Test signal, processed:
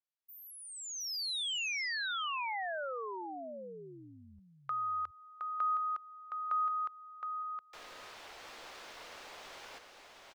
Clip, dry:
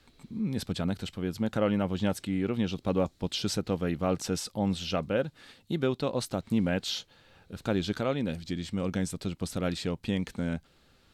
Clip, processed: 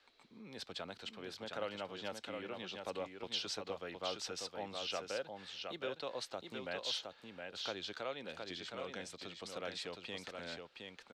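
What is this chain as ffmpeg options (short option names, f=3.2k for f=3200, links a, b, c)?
-filter_complex "[0:a]acrossover=split=150|3000[a][b][c];[b]acompressor=threshold=-35dB:ratio=2[d];[a][d][c]amix=inputs=3:normalize=0,acrossover=split=420 5900:gain=0.0708 1 0.141[e][f][g];[e][f][g]amix=inputs=3:normalize=0,aecho=1:1:716:0.562,volume=-3.5dB"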